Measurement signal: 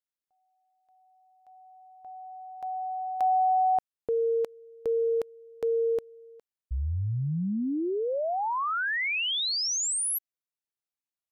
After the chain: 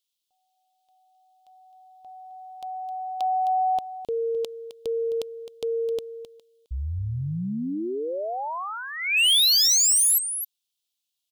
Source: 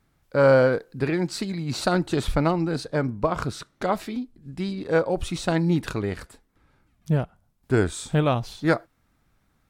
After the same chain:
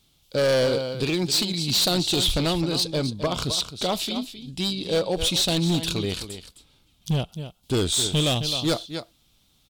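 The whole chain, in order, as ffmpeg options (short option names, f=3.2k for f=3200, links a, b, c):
-af "highshelf=f=2.4k:t=q:w=3:g=11,aecho=1:1:262:0.251,volume=17.5dB,asoftclip=hard,volume=-17.5dB"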